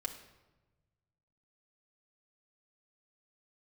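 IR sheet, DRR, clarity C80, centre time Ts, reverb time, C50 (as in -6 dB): 0.0 dB, 12.0 dB, 15 ms, 1.1 s, 10.0 dB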